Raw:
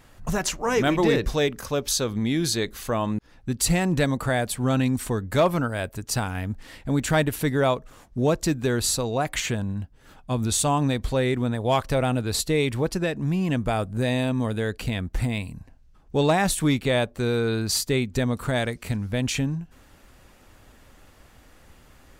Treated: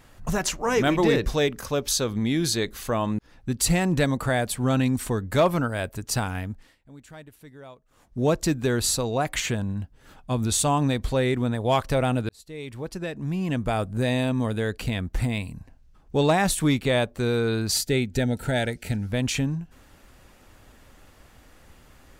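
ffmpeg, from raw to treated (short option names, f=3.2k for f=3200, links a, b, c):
-filter_complex "[0:a]asettb=1/sr,asplit=3[a][b][c];[a]atrim=end=17.724[d];[b]atrim=start=17.72:end=19.08,asetpts=PTS-STARTPTS,afade=t=in:d=0.004:c=qsin,afade=t=out:st=1.356:d=0.004:c=qsin,asuperstop=centerf=1100:order=20:qfactor=3.2[e];[c]atrim=start=19.076[f];[d][e]acrossfade=d=0.004:c1=hsin:c2=qsin[g];[g][f]acrossfade=d=0.004:c1=qsin:c2=hsin,asplit=4[h][i][j][k];[h]atrim=end=6.76,asetpts=PTS-STARTPTS,afade=t=out:st=6.34:d=0.42:silence=0.0707946[l];[i]atrim=start=6.76:end=7.87,asetpts=PTS-STARTPTS,volume=-23dB[m];[j]atrim=start=7.87:end=12.29,asetpts=PTS-STARTPTS,afade=t=in:d=0.42:silence=0.0707946,afade=t=out:st=4.416:d=0.004:c=hsin[n];[k]atrim=start=12.29,asetpts=PTS-STARTPTS,afade=t=in:d=1.55[o];[l][m][n][o]concat=n=4:v=0:a=1"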